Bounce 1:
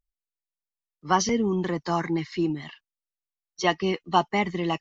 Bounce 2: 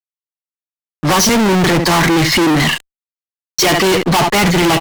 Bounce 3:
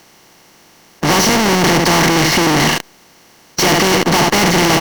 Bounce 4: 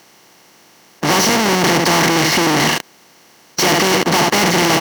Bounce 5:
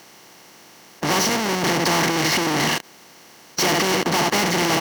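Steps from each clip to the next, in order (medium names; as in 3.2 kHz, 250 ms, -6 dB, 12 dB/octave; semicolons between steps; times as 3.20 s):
delay 71 ms -20 dB; fuzz box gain 46 dB, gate -54 dBFS; power-law waveshaper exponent 0.7; trim +1.5 dB
spectral levelling over time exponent 0.4; trim -5.5 dB
high-pass 150 Hz 6 dB/octave; trim -1 dB
peak limiter -13 dBFS, peak gain reduction 10 dB; trim +1 dB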